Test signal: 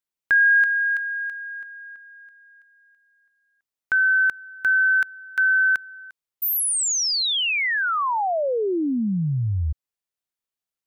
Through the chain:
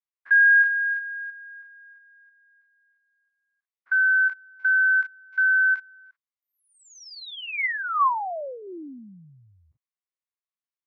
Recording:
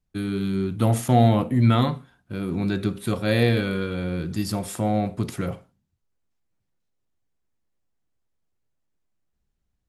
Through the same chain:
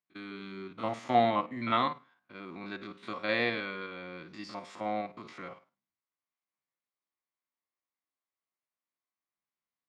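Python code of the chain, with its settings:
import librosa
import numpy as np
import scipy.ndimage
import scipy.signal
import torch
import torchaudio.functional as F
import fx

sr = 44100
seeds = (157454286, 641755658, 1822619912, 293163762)

y = fx.spec_steps(x, sr, hold_ms=50)
y = fx.cabinet(y, sr, low_hz=360.0, low_slope=12, high_hz=5600.0, hz=(440.0, 1100.0, 2100.0), db=(-6, 10, 8))
y = fx.upward_expand(y, sr, threshold_db=-32.0, expansion=1.5)
y = y * 10.0 ** (-2.0 / 20.0)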